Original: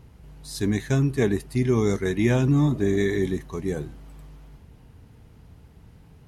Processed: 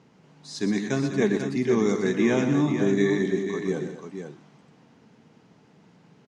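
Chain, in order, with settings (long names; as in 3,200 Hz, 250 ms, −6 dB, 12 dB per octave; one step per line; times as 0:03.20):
Chebyshev band-pass filter 180–6,700 Hz, order 3
multi-tap delay 121/215/491 ms −8.5/−12/−7.5 dB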